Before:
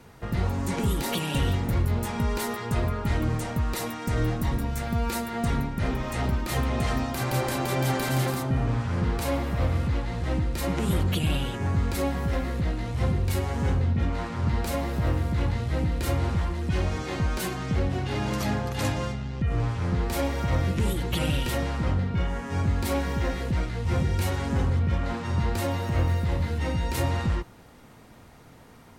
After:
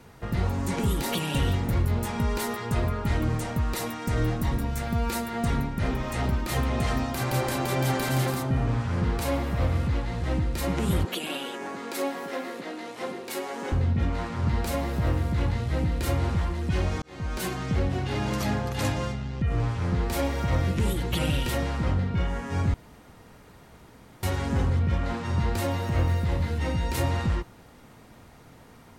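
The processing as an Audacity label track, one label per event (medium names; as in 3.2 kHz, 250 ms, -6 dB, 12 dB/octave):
11.050000	13.720000	high-pass 280 Hz 24 dB/octave
17.020000	17.470000	fade in
22.740000	24.230000	room tone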